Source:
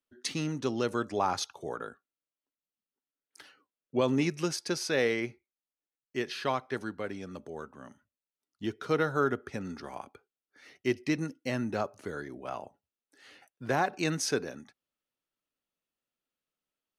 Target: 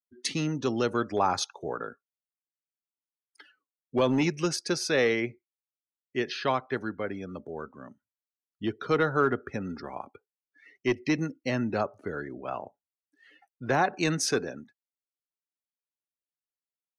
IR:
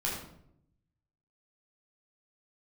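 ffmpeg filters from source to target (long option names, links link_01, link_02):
-filter_complex "[0:a]afftdn=noise_reduction=21:noise_floor=-50,acrossover=split=660|1400[link_01][link_02][link_03];[link_01]volume=24dB,asoftclip=hard,volume=-24dB[link_04];[link_04][link_02][link_03]amix=inputs=3:normalize=0,volume=3.5dB"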